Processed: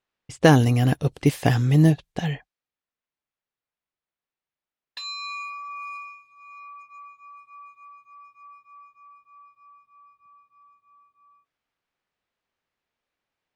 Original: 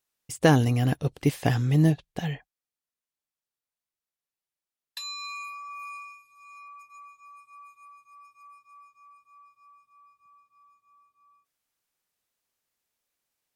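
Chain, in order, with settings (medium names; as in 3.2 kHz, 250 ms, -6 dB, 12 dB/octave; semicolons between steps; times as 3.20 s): level-controlled noise filter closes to 2.9 kHz, open at -24.5 dBFS; trim +4 dB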